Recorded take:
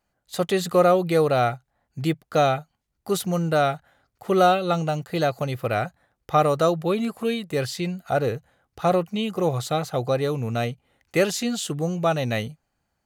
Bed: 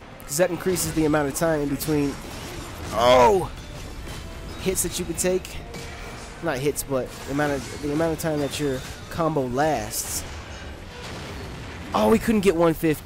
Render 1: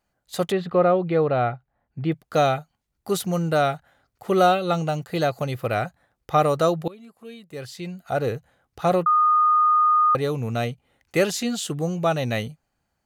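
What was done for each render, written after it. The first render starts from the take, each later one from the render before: 0.52–2.12 air absorption 380 m; 6.88–8.32 fade in quadratic, from -21 dB; 9.06–10.15 bleep 1230 Hz -14.5 dBFS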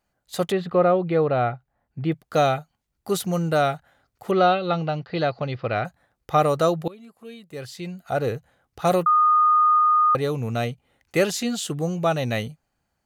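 4.31–5.85 elliptic low-pass 4900 Hz, stop band 60 dB; 8.85–9.79 high shelf 4600 Hz +10 dB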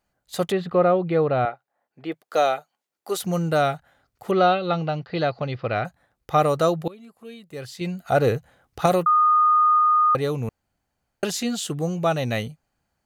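1.45–3.23 Chebyshev high-pass 450 Hz; 7.81–8.86 gain +5 dB; 10.49–11.23 room tone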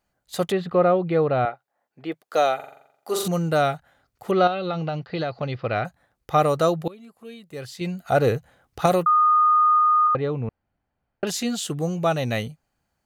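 2.55–3.28 flutter echo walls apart 7.4 m, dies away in 0.71 s; 4.47–5.43 compressor 5:1, threshold -22 dBFS; 10.07–11.27 air absorption 330 m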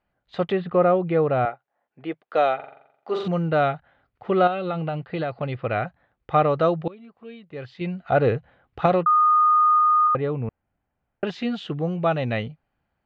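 LPF 3200 Hz 24 dB/oct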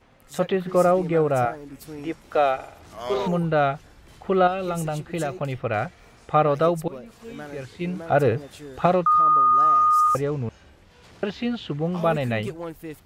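add bed -15 dB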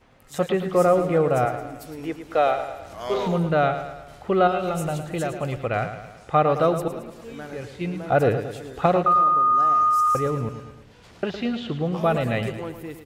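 feedback echo 0.11 s, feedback 52%, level -10 dB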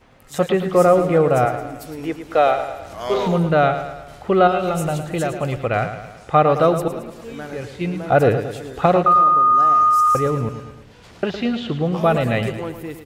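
gain +4.5 dB; limiter -1 dBFS, peak gain reduction 1.5 dB

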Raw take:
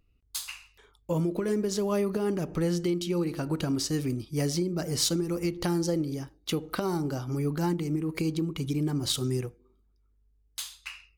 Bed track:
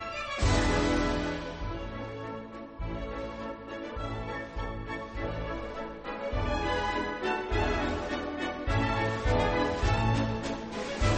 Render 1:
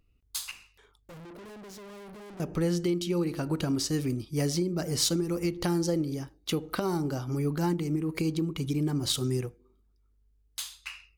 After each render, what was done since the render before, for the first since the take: 0.51–2.4 tube stage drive 45 dB, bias 0.5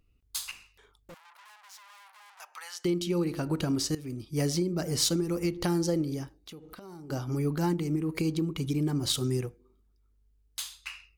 1.14–2.85 elliptic high-pass 870 Hz, stop band 80 dB; 3.95–4.4 fade in, from -16.5 dB; 6.34–7.1 compressor 4:1, threshold -46 dBFS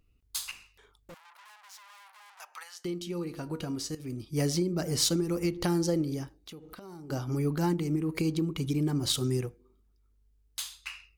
2.63–4 resonator 240 Hz, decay 0.15 s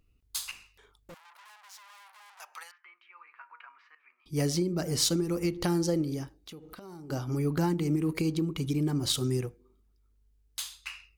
2.71–4.26 Chebyshev band-pass 1000–2400 Hz, order 3; 7.57–8.13 three-band squash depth 100%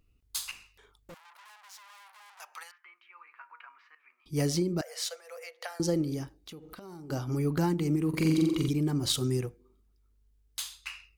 4.81–5.8 rippled Chebyshev high-pass 470 Hz, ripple 9 dB; 8.09–8.69 flutter echo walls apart 7.6 m, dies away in 0.91 s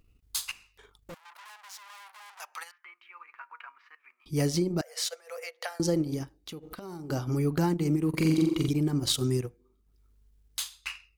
transient shaper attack -1 dB, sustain -8 dB; in parallel at -2 dB: compressor, threshold -36 dBFS, peak gain reduction 14 dB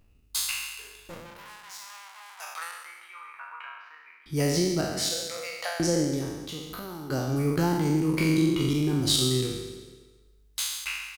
spectral trails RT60 1.16 s; feedback echo 0.141 s, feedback 54%, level -16 dB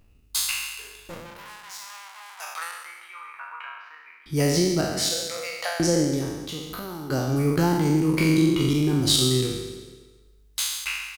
gain +3.5 dB

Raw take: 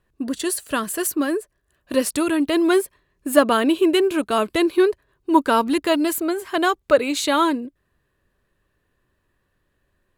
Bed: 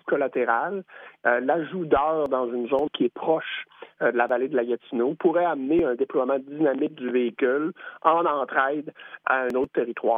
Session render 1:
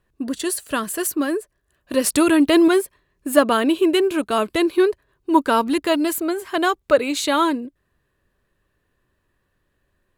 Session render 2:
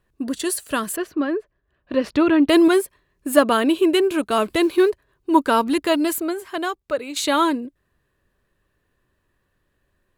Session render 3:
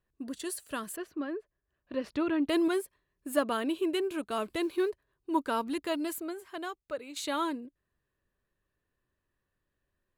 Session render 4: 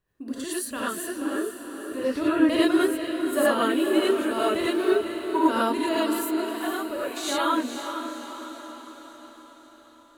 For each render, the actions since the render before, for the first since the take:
2.04–2.68 gain +5 dB
0.96–2.49 air absorption 270 m; 4.31–4.9 G.711 law mismatch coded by mu; 6.12–7.16 fade out quadratic, to -9 dB
gain -13 dB
on a send: diffused feedback echo 0.478 s, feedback 56%, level -8 dB; on the sum: non-linear reverb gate 0.13 s rising, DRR -7 dB

